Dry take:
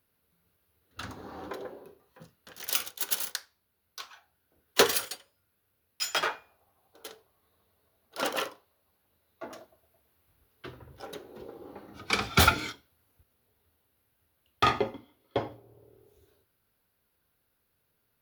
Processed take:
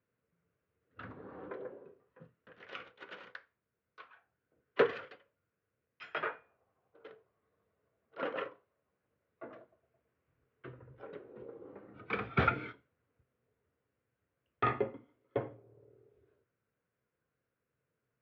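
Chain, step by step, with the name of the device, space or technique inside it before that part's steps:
bass cabinet (loudspeaker in its box 77–2,300 Hz, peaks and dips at 84 Hz −5 dB, 130 Hz +6 dB, 480 Hz +5 dB, 830 Hz −7 dB)
level −6 dB

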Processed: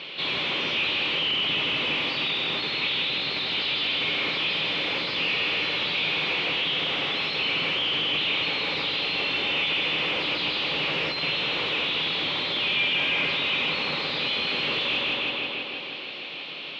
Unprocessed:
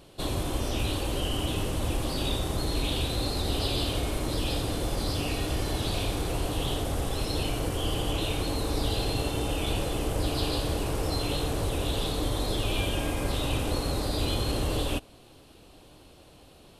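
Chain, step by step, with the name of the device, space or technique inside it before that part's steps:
meter weighting curve D
feedback echo with a low-pass in the loop 160 ms, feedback 65%, low-pass 4,900 Hz, level −4 dB
overdrive pedal into a guitar cabinet (mid-hump overdrive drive 30 dB, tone 6,300 Hz, clips at −9.5 dBFS; loudspeaker in its box 94–3,500 Hz, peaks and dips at 96 Hz −4 dB, 160 Hz +8 dB, 330 Hz −3 dB, 690 Hz −6 dB, 1,600 Hz −4 dB, 2,300 Hz +5 dB)
level −8.5 dB

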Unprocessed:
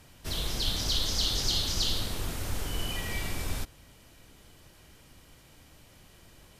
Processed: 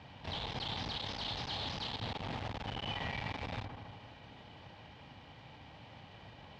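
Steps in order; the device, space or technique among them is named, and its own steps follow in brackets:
analogue delay pedal into a guitar amplifier (bucket-brigade delay 77 ms, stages 1,024, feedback 71%, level −15 dB; tube saturation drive 39 dB, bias 0.45; loudspeaker in its box 92–3,800 Hz, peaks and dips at 110 Hz +4 dB, 360 Hz −7 dB, 830 Hz +9 dB, 1,400 Hz −4 dB)
level +5.5 dB

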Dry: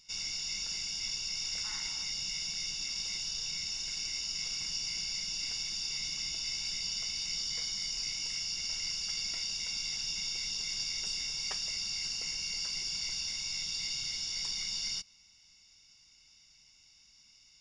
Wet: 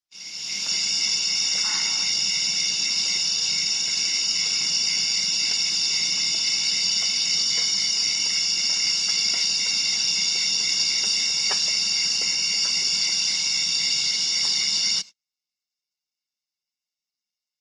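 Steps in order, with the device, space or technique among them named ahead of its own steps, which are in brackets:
video call (high-pass filter 170 Hz 24 dB per octave; automatic gain control gain up to 11.5 dB; noise gate −36 dBFS, range −41 dB; level +2 dB; Opus 20 kbit/s 48,000 Hz)

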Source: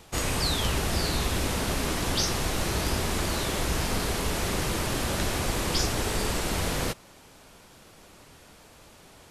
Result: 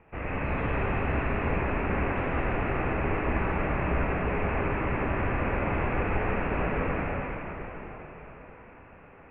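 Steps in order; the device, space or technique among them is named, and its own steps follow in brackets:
cathedral (convolution reverb RT60 4.7 s, pre-delay 45 ms, DRR −6.5 dB)
Chebyshev low-pass filter 2,600 Hz, order 6
level −5.5 dB

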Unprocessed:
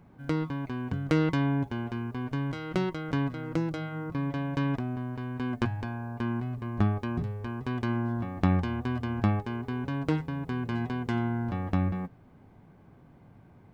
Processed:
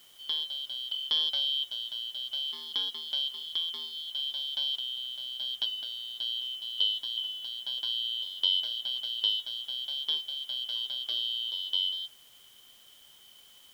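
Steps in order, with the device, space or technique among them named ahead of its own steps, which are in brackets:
split-band scrambled radio (band-splitting scrambler in four parts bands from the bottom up 3412; band-pass filter 320–3,000 Hz; white noise bed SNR 26 dB)

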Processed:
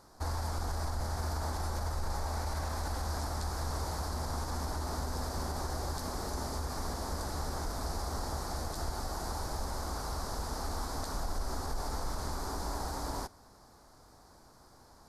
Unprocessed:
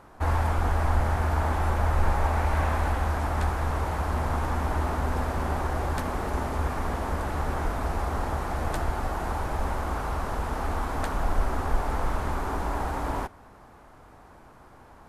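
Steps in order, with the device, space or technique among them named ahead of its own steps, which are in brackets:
over-bright horn tweeter (high shelf with overshoot 3,600 Hz +9.5 dB, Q 3; brickwall limiter −18.5 dBFS, peak gain reduction 10 dB)
level −7.5 dB

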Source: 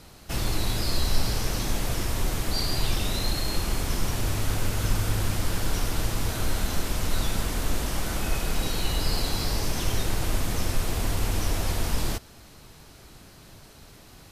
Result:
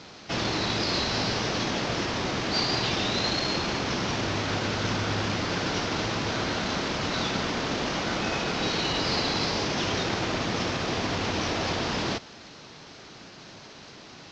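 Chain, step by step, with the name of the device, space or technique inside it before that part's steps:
early wireless headset (high-pass filter 170 Hz 12 dB per octave; variable-slope delta modulation 32 kbit/s)
level +5.5 dB

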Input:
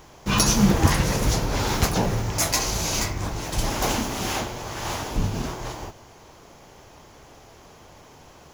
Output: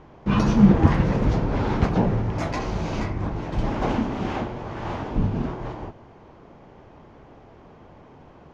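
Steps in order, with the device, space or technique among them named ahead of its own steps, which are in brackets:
phone in a pocket (low-pass filter 3,200 Hz 12 dB per octave; parametric band 220 Hz +5 dB 1.6 octaves; high-shelf EQ 2,400 Hz −11 dB)

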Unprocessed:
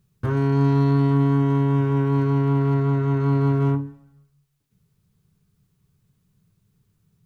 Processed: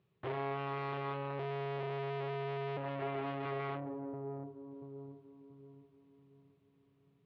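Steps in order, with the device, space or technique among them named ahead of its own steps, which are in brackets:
0:01.39–0:02.77: parametric band 78 Hz +13.5 dB 2.4 octaves
delay with a low-pass on its return 684 ms, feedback 41%, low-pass 440 Hz, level −13 dB
guitar amplifier (tube saturation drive 35 dB, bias 0.6; bass and treble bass −12 dB, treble −6 dB; loudspeaker in its box 76–3,500 Hz, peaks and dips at 240 Hz −4 dB, 380 Hz +5 dB, 610 Hz +3 dB, 1,500 Hz −6 dB)
level +2.5 dB

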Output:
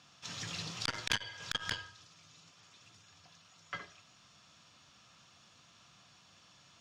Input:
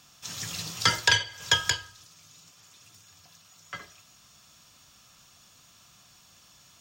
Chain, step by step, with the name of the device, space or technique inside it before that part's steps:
valve radio (band-pass filter 88–4,600 Hz; tube saturation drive 14 dB, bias 0.5; saturating transformer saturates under 2,200 Hz)

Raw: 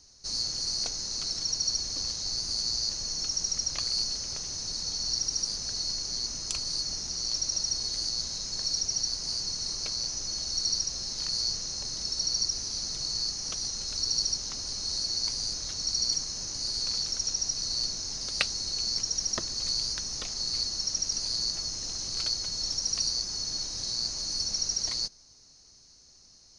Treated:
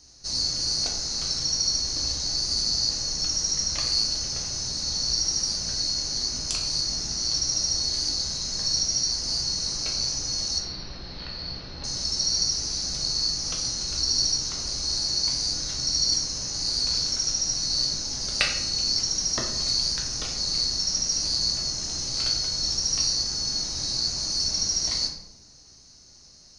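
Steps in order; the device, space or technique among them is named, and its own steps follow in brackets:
0:10.58–0:11.84: Butterworth low-pass 3,700 Hz 36 dB per octave
bathroom (convolution reverb RT60 0.90 s, pre-delay 7 ms, DRR −0.5 dB)
level +2.5 dB

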